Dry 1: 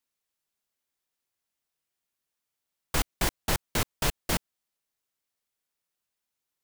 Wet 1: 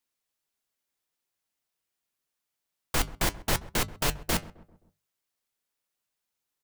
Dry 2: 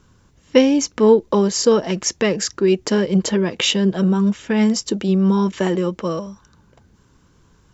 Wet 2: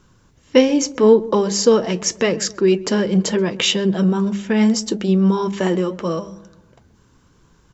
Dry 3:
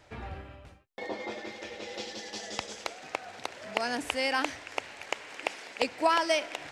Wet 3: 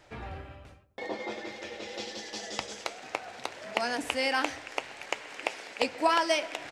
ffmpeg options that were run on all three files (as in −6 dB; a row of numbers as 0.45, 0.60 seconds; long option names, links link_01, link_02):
-filter_complex "[0:a]flanger=delay=5.6:depth=3.6:regen=-72:speed=0.79:shape=sinusoidal,bandreject=frequency=50:width_type=h:width=6,bandreject=frequency=100:width_type=h:width=6,bandreject=frequency=150:width_type=h:width=6,bandreject=frequency=200:width_type=h:width=6,asplit=2[link_01][link_02];[link_02]adelay=131,lowpass=frequency=1100:poles=1,volume=-17.5dB,asplit=2[link_03][link_04];[link_04]adelay=131,lowpass=frequency=1100:poles=1,volume=0.51,asplit=2[link_05][link_06];[link_06]adelay=131,lowpass=frequency=1100:poles=1,volume=0.51,asplit=2[link_07][link_08];[link_08]adelay=131,lowpass=frequency=1100:poles=1,volume=0.51[link_09];[link_01][link_03][link_05][link_07][link_09]amix=inputs=5:normalize=0,volume=5dB"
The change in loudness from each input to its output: +0.5, +0.5, +0.5 LU